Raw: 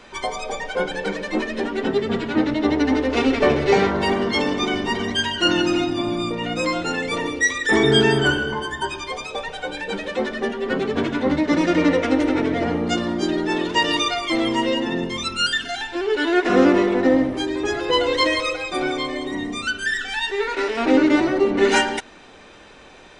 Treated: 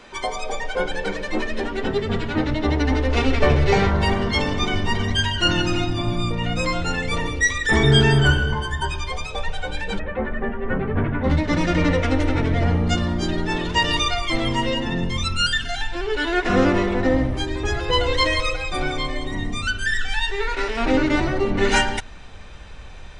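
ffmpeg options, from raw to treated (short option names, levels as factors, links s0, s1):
-filter_complex "[0:a]asplit=3[s0][s1][s2];[s0]afade=t=out:st=9.98:d=0.02[s3];[s1]lowpass=f=2100:w=0.5412,lowpass=f=2100:w=1.3066,afade=t=in:st=9.98:d=0.02,afade=t=out:st=11.23:d=0.02[s4];[s2]afade=t=in:st=11.23:d=0.02[s5];[s3][s4][s5]amix=inputs=3:normalize=0,asubboost=boost=11.5:cutoff=91"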